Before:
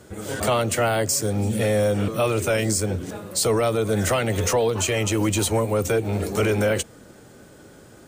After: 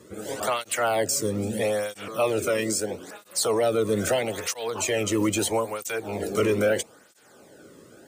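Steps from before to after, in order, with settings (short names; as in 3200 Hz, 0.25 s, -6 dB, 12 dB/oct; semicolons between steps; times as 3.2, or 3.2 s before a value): 2.47–3.21 low shelf 110 Hz -12 dB; tape flanging out of phase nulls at 0.77 Hz, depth 1.4 ms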